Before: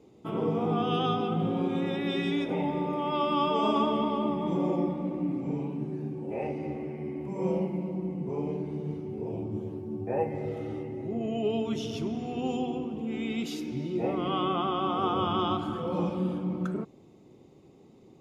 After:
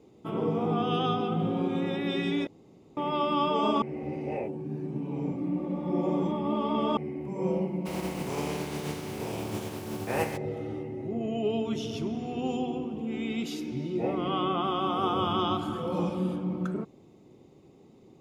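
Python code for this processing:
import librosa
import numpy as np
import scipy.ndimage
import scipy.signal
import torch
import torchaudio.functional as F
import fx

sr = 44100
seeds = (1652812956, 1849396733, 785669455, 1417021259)

y = fx.spec_flatten(x, sr, power=0.48, at=(7.85, 10.36), fade=0.02)
y = fx.high_shelf(y, sr, hz=6500.0, db=11.0, at=(14.64, 16.36))
y = fx.edit(y, sr, fx.room_tone_fill(start_s=2.47, length_s=0.5),
    fx.reverse_span(start_s=3.82, length_s=3.15), tone=tone)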